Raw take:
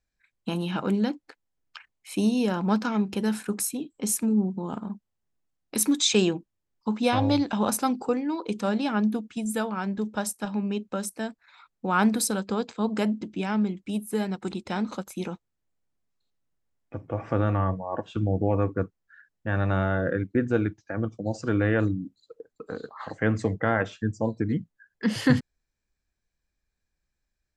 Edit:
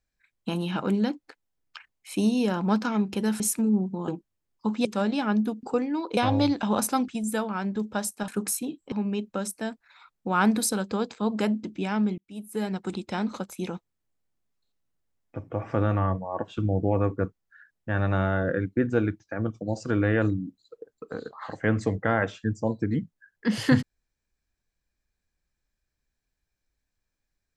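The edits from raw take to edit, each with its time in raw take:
0:03.40–0:04.04: move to 0:10.50
0:04.72–0:06.30: remove
0:07.07–0:07.98: swap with 0:08.52–0:09.30
0:13.76–0:14.30: fade in

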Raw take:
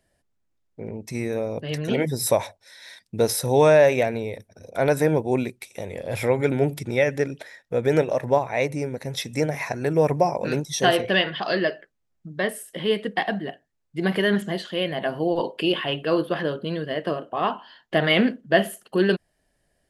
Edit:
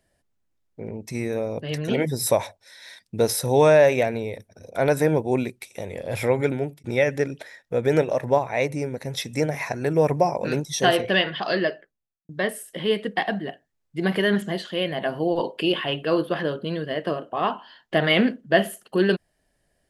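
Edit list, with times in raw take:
0:06.42–0:06.84: fade out
0:11.59–0:12.29: fade out and dull

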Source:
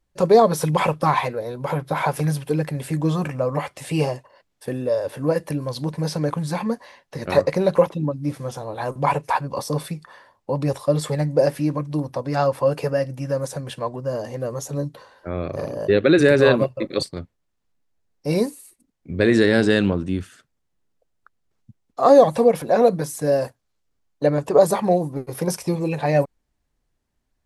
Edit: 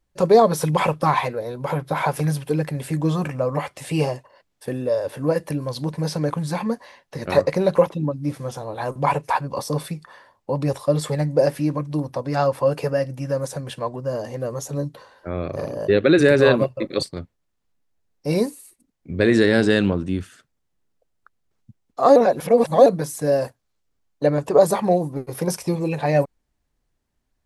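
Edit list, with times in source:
0:22.16–0:22.86: reverse

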